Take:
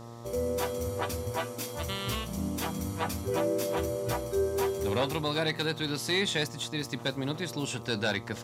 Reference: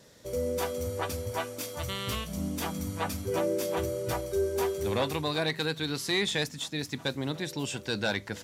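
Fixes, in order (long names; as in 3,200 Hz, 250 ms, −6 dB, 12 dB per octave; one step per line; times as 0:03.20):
hum removal 117 Hz, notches 11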